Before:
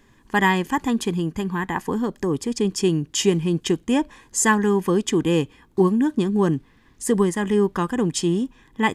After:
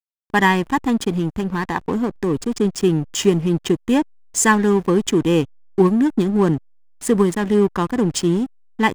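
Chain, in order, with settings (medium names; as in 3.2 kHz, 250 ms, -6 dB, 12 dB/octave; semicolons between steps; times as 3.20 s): 2.52–3.88 s: dynamic bell 4.4 kHz, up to -4 dB, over -38 dBFS, Q 0.97; hysteresis with a dead band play -27 dBFS; trim +3.5 dB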